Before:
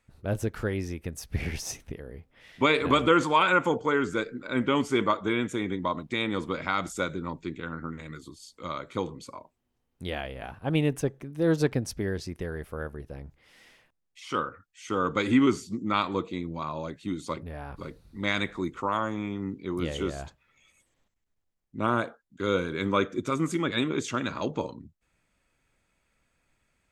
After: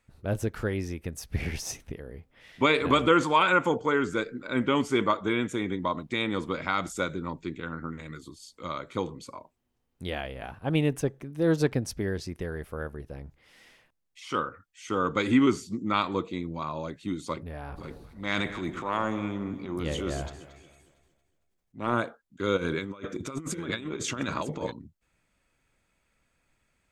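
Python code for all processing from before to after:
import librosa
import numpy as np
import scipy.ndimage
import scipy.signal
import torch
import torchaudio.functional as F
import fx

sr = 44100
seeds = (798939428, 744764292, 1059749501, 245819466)

y = fx.chain(x, sr, fx.transient(attack_db=-9, sustain_db=6),
    fx.echo_alternate(ms=114, hz=820.0, feedback_pct=62, wet_db=-10), at=(17.57, 21.94))
y = fx.chain(y, sr, fx.over_compress(threshold_db=-32.0, ratio=-0.5),
    fx.echo_single(ms=952, db=-13.5), at=(22.57, 24.72))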